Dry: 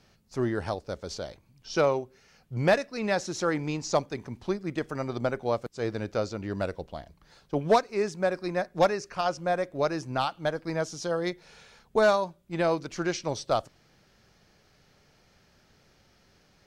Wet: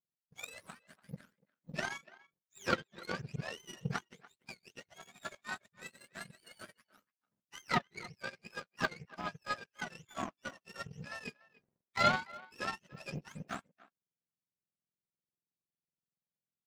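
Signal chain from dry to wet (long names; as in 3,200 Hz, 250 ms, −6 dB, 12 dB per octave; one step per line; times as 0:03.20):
frequency axis turned over on the octave scale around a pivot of 940 Hz
power curve on the samples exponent 2
far-end echo of a speakerphone 290 ms, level −20 dB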